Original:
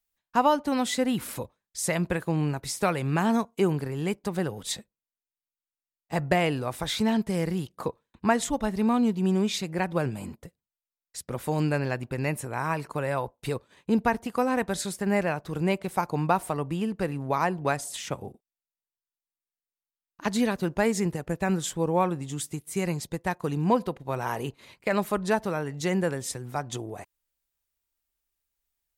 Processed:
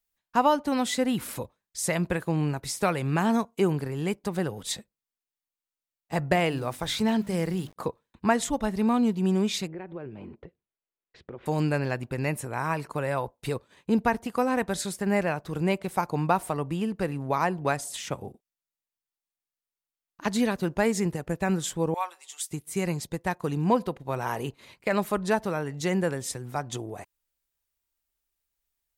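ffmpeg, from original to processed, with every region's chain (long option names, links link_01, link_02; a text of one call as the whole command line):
ffmpeg -i in.wav -filter_complex "[0:a]asettb=1/sr,asplit=3[link_01][link_02][link_03];[link_01]atrim=end=6.364[link_04];[link_02]atrim=start=6.36:end=7.76,asetpts=PTS-STARTPTS,afade=type=in:duration=0.004:curve=qsin,afade=type=out:start_time=1.396:duration=0.004:curve=qsin,agate=range=-33dB:threshold=-39dB:ratio=3:release=100:detection=peak,bandreject=frequency=50:width_type=h:width=6,bandreject=frequency=100:width_type=h:width=6,bandreject=frequency=150:width_type=h:width=6,bandreject=frequency=200:width_type=h:width=6,bandreject=frequency=250:width_type=h:width=6,bandreject=frequency=300:width_type=h:width=6,aeval=exprs='val(0)*gte(abs(val(0)),0.00422)':channel_layout=same[link_05];[link_03]atrim=start=7.756[link_06];[link_04][link_05]acrossfade=duration=0.004:curve1=hsin:curve2=qsin[link_07];[link_07][link_06]acrossfade=duration=0.004:curve1=qsin:curve2=hsin,asettb=1/sr,asplit=3[link_08][link_09][link_10];[link_08]atrim=end=9.674[link_11];[link_09]atrim=start=9.67:end=11.46,asetpts=PTS-STARTPTS,afade=type=in:duration=0.004:curve=qsin,afade=type=out:start_time=1.786:duration=0.004:curve=qsin,lowpass=frequency=3100:width=0.5412,lowpass=frequency=3100:width=1.3066,equalizer=frequency=380:width_type=o:width=0.73:gain=10,acompressor=threshold=-40dB:ratio=3:attack=3.2:release=140:knee=1:detection=peak[link_12];[link_10]atrim=start=11.456[link_13];[link_11][link_12]acrossfade=duration=0.004:curve1=hsin:curve2=qsin[link_14];[link_14][link_13]acrossfade=duration=0.004:curve1=qsin:curve2=hsin,asettb=1/sr,asplit=3[link_15][link_16][link_17];[link_15]atrim=end=21.944[link_18];[link_16]atrim=start=21.94:end=22.51,asetpts=PTS-STARTPTS,afade=type=in:duration=0.004:curve=qsin,afade=type=out:start_time=0.566:duration=0.004:curve=qsin,highpass=frequency=890:width=0.5412,highpass=frequency=890:width=1.3066,equalizer=frequency=1400:width_type=o:width=1.3:gain=-7,aecho=1:1:5.3:0.56,atrim=end_sample=25137[link_19];[link_17]atrim=start=22.506[link_20];[link_18][link_19]acrossfade=duration=0.004:curve1=hsin:curve2=qsin[link_21];[link_21][link_20]acrossfade=duration=0.004:curve1=qsin:curve2=hsin" out.wav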